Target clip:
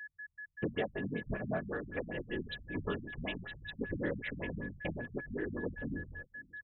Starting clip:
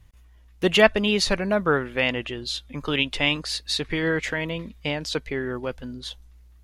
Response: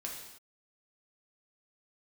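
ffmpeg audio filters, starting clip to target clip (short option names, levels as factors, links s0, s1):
-filter_complex "[0:a]agate=range=0.0355:threshold=0.00631:ratio=16:detection=peak,highshelf=f=3700:g=-9,acompressor=threshold=0.0316:ratio=12,afftfilt=real='hypot(re,im)*cos(2*PI*random(0))':imag='hypot(re,im)*sin(2*PI*random(1))':win_size=512:overlap=0.75,flanger=delay=19.5:depth=6:speed=1.1,asoftclip=type=hard:threshold=0.0266,aeval=exprs='val(0)+0.00355*sin(2*PI*1700*n/s)':c=same,asplit=2[s0][s1];[s1]aecho=0:1:531:0.0668[s2];[s0][s2]amix=inputs=2:normalize=0,afftfilt=real='re*lt(b*sr/1024,230*pow(4100/230,0.5+0.5*sin(2*PI*5.2*pts/sr)))':imag='im*lt(b*sr/1024,230*pow(4100/230,0.5+0.5*sin(2*PI*5.2*pts/sr)))':win_size=1024:overlap=0.75,volume=2.24"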